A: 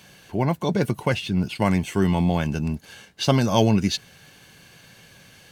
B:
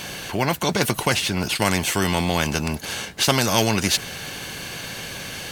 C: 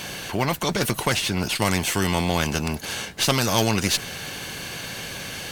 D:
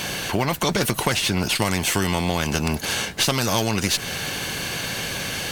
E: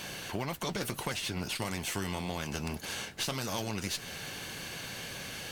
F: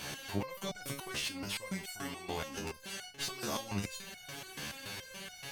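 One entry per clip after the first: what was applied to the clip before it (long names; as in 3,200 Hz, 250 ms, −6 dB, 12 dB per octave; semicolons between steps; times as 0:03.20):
every bin compressed towards the loudest bin 2 to 1; level +3.5 dB
one-sided soft clipper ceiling −17.5 dBFS
downward compressor 5 to 1, threshold −23 dBFS, peak gain reduction 8.5 dB; level +5.5 dB
flanger 1.7 Hz, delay 2.9 ms, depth 9.5 ms, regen −69%; level −9 dB
step-sequenced resonator 7 Hz 72–730 Hz; level +8 dB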